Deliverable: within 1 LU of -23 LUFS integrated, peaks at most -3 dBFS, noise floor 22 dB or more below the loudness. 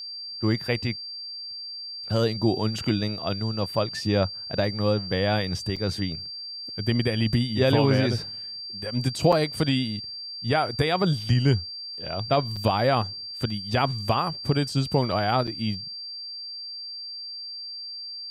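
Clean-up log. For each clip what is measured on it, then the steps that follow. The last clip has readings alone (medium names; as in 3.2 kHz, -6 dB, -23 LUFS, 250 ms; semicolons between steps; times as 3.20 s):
dropouts 4; longest dropout 5.4 ms; steady tone 4.7 kHz; tone level -34 dBFS; loudness -26.0 LUFS; peak level -8.0 dBFS; loudness target -23.0 LUFS
-> interpolate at 5.76/9.32/12.56/15.47 s, 5.4 ms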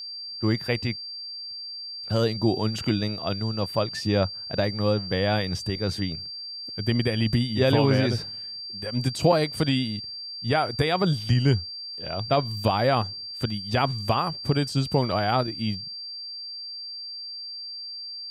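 dropouts 0; steady tone 4.7 kHz; tone level -34 dBFS
-> band-stop 4.7 kHz, Q 30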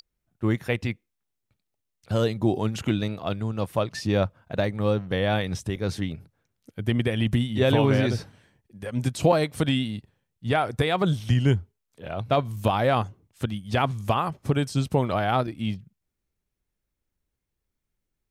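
steady tone not found; loudness -25.5 LUFS; peak level -8.5 dBFS; loudness target -23.0 LUFS
-> trim +2.5 dB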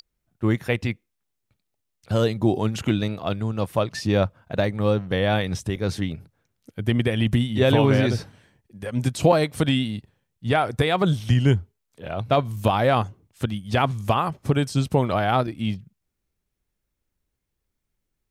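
loudness -23.0 LUFS; peak level -6.0 dBFS; noise floor -79 dBFS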